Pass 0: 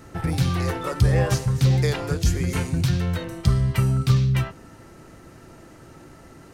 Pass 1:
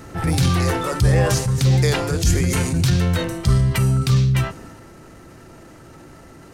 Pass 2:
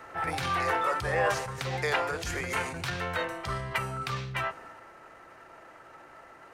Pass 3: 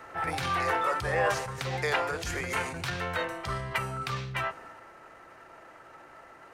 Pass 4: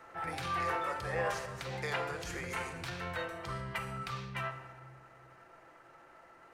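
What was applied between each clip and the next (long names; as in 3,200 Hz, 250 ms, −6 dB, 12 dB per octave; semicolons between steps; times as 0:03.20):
dynamic equaliser 8,400 Hz, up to +5 dB, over −50 dBFS, Q 0.75; transient designer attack −5 dB, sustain +4 dB; in parallel at +1 dB: speech leveller 0.5 s; on the sum: level −2.5 dB
three-way crossover with the lows and the highs turned down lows −22 dB, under 560 Hz, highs −16 dB, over 2,600 Hz
no processing that can be heard
rectangular room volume 1,100 cubic metres, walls mixed, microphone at 0.77 metres; level −8 dB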